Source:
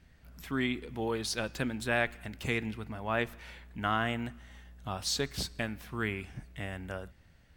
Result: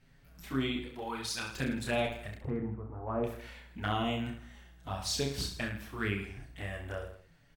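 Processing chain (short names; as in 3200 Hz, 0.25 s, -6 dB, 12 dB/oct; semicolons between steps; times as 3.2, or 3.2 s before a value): 0.87–1.53 low shelf 340 Hz -8 dB; 2.35–3.24 LPF 1100 Hz 24 dB/oct; envelope flanger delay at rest 8.2 ms, full sweep at -27.5 dBFS; on a send: reverse bouncing-ball echo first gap 30 ms, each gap 1.2×, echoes 5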